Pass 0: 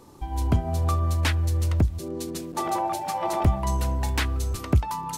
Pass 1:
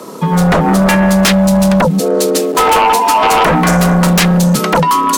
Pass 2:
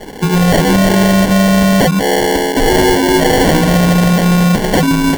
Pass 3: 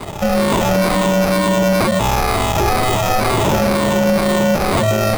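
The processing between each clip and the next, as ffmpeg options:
ffmpeg -i in.wav -af "afreqshift=110,aeval=exprs='0.335*sin(PI/2*5.01*val(0)/0.335)':channel_layout=same,equalizer=frequency=110:width=3.4:gain=-13,volume=3.5dB" out.wav
ffmpeg -i in.wav -filter_complex "[0:a]acrossover=split=1300[link_01][link_02];[link_02]alimiter=limit=-10dB:level=0:latency=1[link_03];[link_01][link_03]amix=inputs=2:normalize=0,acrusher=samples=35:mix=1:aa=0.000001" out.wav
ffmpeg -i in.wav -af "afftfilt=real='re*pow(10,8/40*sin(2*PI*(0.81*log(max(b,1)*sr/1024/100)/log(2)-(-2.1)*(pts-256)/sr)))':imag='im*pow(10,8/40*sin(2*PI*(0.81*log(max(b,1)*sr/1024/100)/log(2)-(-2.1)*(pts-256)/sr)))':win_size=1024:overlap=0.75,alimiter=limit=-10.5dB:level=0:latency=1:release=39,aeval=exprs='val(0)*sin(2*PI*380*n/s)':channel_layout=same,volume=4dB" out.wav

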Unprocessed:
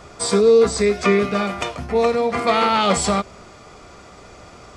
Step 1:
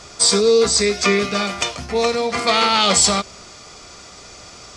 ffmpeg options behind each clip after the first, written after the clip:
ffmpeg -i in.wav -af "equalizer=frequency=5600:width=0.58:gain=14.5,volume=-2dB" out.wav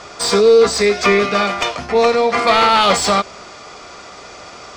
ffmpeg -i in.wav -filter_complex "[0:a]asplit=2[link_01][link_02];[link_02]highpass=frequency=720:poles=1,volume=15dB,asoftclip=type=tanh:threshold=-1dB[link_03];[link_01][link_03]amix=inputs=2:normalize=0,lowpass=frequency=1200:poles=1,volume=-6dB,volume=2dB" out.wav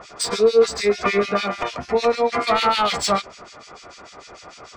ffmpeg -i in.wav -filter_complex "[0:a]acrossover=split=1900[link_01][link_02];[link_01]aeval=exprs='val(0)*(1-1/2+1/2*cos(2*PI*6.7*n/s))':channel_layout=same[link_03];[link_02]aeval=exprs='val(0)*(1-1/2-1/2*cos(2*PI*6.7*n/s))':channel_layout=same[link_04];[link_03][link_04]amix=inputs=2:normalize=0,volume=-1.5dB" out.wav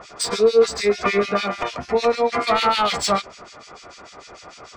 ffmpeg -i in.wav -af anull out.wav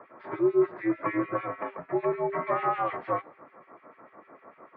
ffmpeg -i in.wav -af "highpass=frequency=250:width_type=q:width=0.5412,highpass=frequency=250:width_type=q:width=1.307,lowpass=frequency=2100:width_type=q:width=0.5176,lowpass=frequency=2100:width_type=q:width=0.7071,lowpass=frequency=2100:width_type=q:width=1.932,afreqshift=-81,bandreject=frequency=396.6:width_type=h:width=4,bandreject=frequency=793.2:width_type=h:width=4,bandreject=frequency=1189.8:width_type=h:width=4,bandreject=frequency=1586.4:width_type=h:width=4,bandreject=frequency=1983:width_type=h:width=4,bandreject=frequency=2379.6:width_type=h:width=4,bandreject=frequency=2776.2:width_type=h:width=4,bandreject=frequency=3172.8:width_type=h:width=4,bandreject=frequency=3569.4:width_type=h:width=4,bandreject=frequency=3966:width_type=h:width=4,bandreject=frequency=4362.6:width_type=h:width=4,bandreject=frequency=4759.2:width_type=h:width=4,bandreject=frequency=5155.8:width_type=h:width=4,bandreject=frequency=5552.4:width_type=h:width=4,bandreject=frequency=5949:width_type=h:width=4,bandreject=frequency=6345.6:width_type=h:width=4,bandreject=frequency=6742.2:width_type=h:width=4,bandreject=frequency=7138.8:width_type=h:width=4,bandreject=frequency=7535.4:width_type=h:width=4,bandreject=frequency=7932:width_type=h:width=4,bandreject=frequency=8328.6:width_type=h:width=4,bandreject=frequency=8725.2:width_type=h:width=4,bandreject=frequency=9121.8:width_type=h:width=4,bandreject=frequency=9518.4:width_type=h:width=4,bandreject=frequency=9915:width_type=h:width=4,bandreject=frequency=10311.6:width_type=h:width=4,bandreject=frequency=10708.2:width_type=h:width=4,bandreject=frequency=11104.8:width_type=h:width=4,bandreject=frequency=11501.4:width_type=h:width=4,bandreject=frequency=11898:width_type=h:width=4,bandreject=frequency=12294.6:width_type=h:width=4,bandreject=frequency=12691.2:width_type=h:width=4,volume=-8dB" out.wav

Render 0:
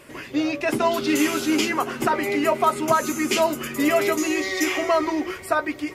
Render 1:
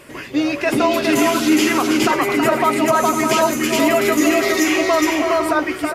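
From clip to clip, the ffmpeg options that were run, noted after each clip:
ffmpeg -i in.wav -filter_complex "[0:a]asplit=2[link_01][link_02];[link_02]aecho=0:1:322|413|503:0.376|0.708|0.251[link_03];[link_01][link_03]amix=inputs=2:normalize=0,alimiter=level_in=9.5dB:limit=-1dB:release=50:level=0:latency=1,volume=-5dB" out.wav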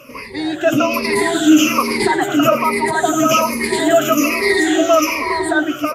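ffmpeg -i in.wav -af "afftfilt=real='re*pow(10,21/40*sin(2*PI*(0.89*log(max(b,1)*sr/1024/100)/log(2)-(-1.2)*(pts-256)/sr)))':imag='im*pow(10,21/40*sin(2*PI*(0.89*log(max(b,1)*sr/1024/100)/log(2)-(-1.2)*(pts-256)/sr)))':win_size=1024:overlap=0.75,volume=-3.5dB" out.wav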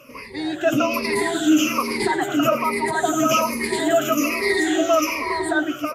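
ffmpeg -i in.wav -af "dynaudnorm=framelen=150:gausssize=5:maxgain=4dB,volume=-6dB" out.wav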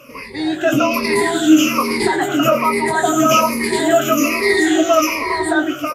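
ffmpeg -i in.wav -filter_complex "[0:a]asplit=2[link_01][link_02];[link_02]adelay=22,volume=-7dB[link_03];[link_01][link_03]amix=inputs=2:normalize=0,volume=4dB" out.wav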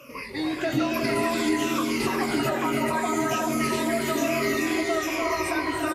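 ffmpeg -i in.wav -filter_complex "[0:a]acrossover=split=160[link_01][link_02];[link_02]acompressor=threshold=-21dB:ratio=6[link_03];[link_01][link_03]amix=inputs=2:normalize=0,aecho=1:1:288|361|431:0.531|0.501|0.501,volume=-4.5dB" out.wav

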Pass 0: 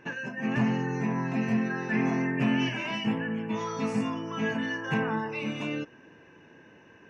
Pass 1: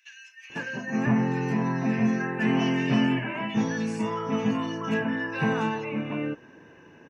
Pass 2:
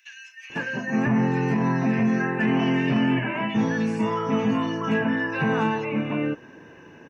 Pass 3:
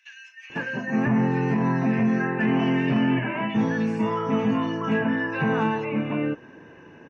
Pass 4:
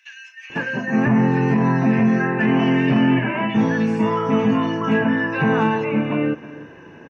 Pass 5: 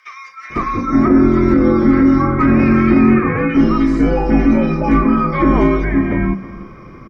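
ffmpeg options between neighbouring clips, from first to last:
ffmpeg -i in.wav -filter_complex "[0:a]acrossover=split=2500[link_01][link_02];[link_01]adelay=500[link_03];[link_03][link_02]amix=inputs=2:normalize=0,volume=3dB" out.wav
ffmpeg -i in.wav -filter_complex "[0:a]acrossover=split=3400[link_01][link_02];[link_02]acompressor=threshold=-54dB:ratio=4:attack=1:release=60[link_03];[link_01][link_03]amix=inputs=2:normalize=0,alimiter=limit=-18.5dB:level=0:latency=1:release=21,volume=4.5dB" out.wav
ffmpeg -i in.wav -af "lowpass=frequency=3400:poles=1" out.wav
ffmpeg -i in.wav -af "aecho=1:1:315:0.133,volume=5dB" out.wav
ffmpeg -i in.wav -af "bandreject=frequency=60:width_type=h:width=6,bandreject=frequency=120:width_type=h:width=6,bandreject=frequency=180:width_type=h:width=6,bandreject=frequency=240:width_type=h:width=6,bandreject=frequency=300:width_type=h:width=6,afreqshift=-490,volume=6dB" out.wav

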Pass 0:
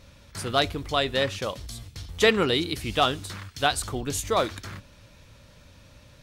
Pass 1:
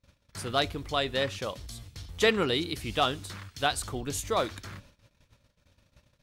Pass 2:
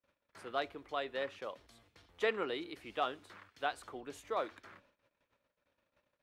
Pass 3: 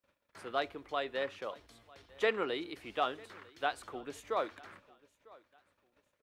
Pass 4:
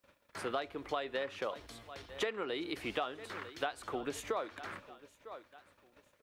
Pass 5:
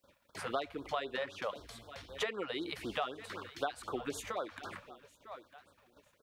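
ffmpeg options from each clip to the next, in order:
ffmpeg -i in.wav -af "agate=range=-26dB:threshold=-49dB:ratio=16:detection=peak,volume=-4dB" out.wav
ffmpeg -i in.wav -filter_complex "[0:a]acrossover=split=280 2700:gain=0.1 1 0.178[link_01][link_02][link_03];[link_01][link_02][link_03]amix=inputs=3:normalize=0,volume=-7.5dB" out.wav
ffmpeg -i in.wav -af "aecho=1:1:949|1898:0.0668|0.0214,volume=2.5dB" out.wav
ffmpeg -i in.wav -af "acompressor=threshold=-41dB:ratio=12,volume=8.5dB" out.wav
ffmpeg -i in.wav -af "afftfilt=real='re*(1-between(b*sr/1024,280*pow(2400/280,0.5+0.5*sin(2*PI*3.9*pts/sr))/1.41,280*pow(2400/280,0.5+0.5*sin(2*PI*3.9*pts/sr))*1.41))':imag='im*(1-between(b*sr/1024,280*pow(2400/280,0.5+0.5*sin(2*PI*3.9*pts/sr))/1.41,280*pow(2400/280,0.5+0.5*sin(2*PI*3.9*pts/sr))*1.41))':win_size=1024:overlap=0.75,volume=1dB" out.wav

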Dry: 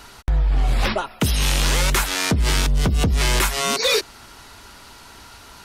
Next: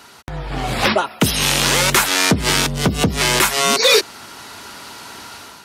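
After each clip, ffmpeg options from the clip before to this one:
ffmpeg -i in.wav -af "highpass=140,dynaudnorm=framelen=270:gausssize=3:maxgain=8.5dB" out.wav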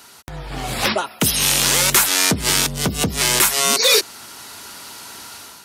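ffmpeg -i in.wav -af "highshelf=frequency=5600:gain=11.5,volume=-4.5dB" out.wav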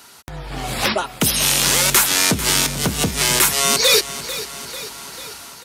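ffmpeg -i in.wav -af "aecho=1:1:444|888|1332|1776|2220|2664:0.2|0.118|0.0695|0.041|0.0242|0.0143" out.wav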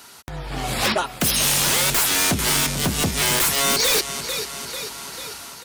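ffmpeg -i in.wav -af "aeval=exprs='0.211*(abs(mod(val(0)/0.211+3,4)-2)-1)':channel_layout=same" out.wav

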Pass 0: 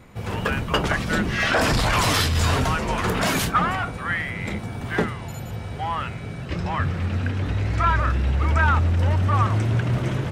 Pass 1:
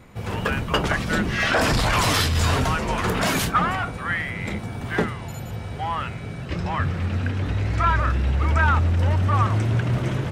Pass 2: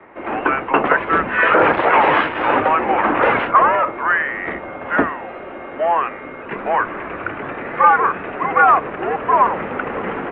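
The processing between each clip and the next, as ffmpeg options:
ffmpeg -i in.wav -af anull out.wav
ffmpeg -i in.wav -filter_complex "[0:a]highpass=frequency=260:width_type=q:width=0.5412,highpass=frequency=260:width_type=q:width=1.307,lowpass=frequency=3000:width_type=q:width=0.5176,lowpass=frequency=3000:width_type=q:width=0.7071,lowpass=frequency=3000:width_type=q:width=1.932,afreqshift=-150,acrossover=split=270 2200:gain=0.158 1 0.178[link_01][link_02][link_03];[link_01][link_02][link_03]amix=inputs=3:normalize=0,alimiter=level_in=12dB:limit=-1dB:release=50:level=0:latency=1,volume=-1dB" out.wav

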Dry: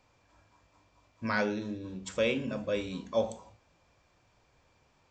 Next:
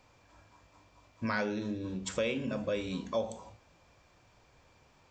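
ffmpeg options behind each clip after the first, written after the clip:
ffmpeg -i in.wav -af "acompressor=threshold=-36dB:ratio=2.5,volume=4dB" out.wav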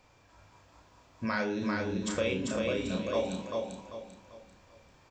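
ffmpeg -i in.wav -filter_complex "[0:a]asplit=2[link_01][link_02];[link_02]adelay=32,volume=-5.5dB[link_03];[link_01][link_03]amix=inputs=2:normalize=0,aecho=1:1:393|786|1179|1572|1965:0.708|0.248|0.0867|0.0304|0.0106" out.wav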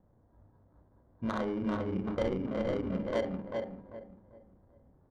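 ffmpeg -i in.wav -af "acrusher=samples=17:mix=1:aa=0.000001,adynamicsmooth=sensitivity=1.5:basefreq=540" out.wav

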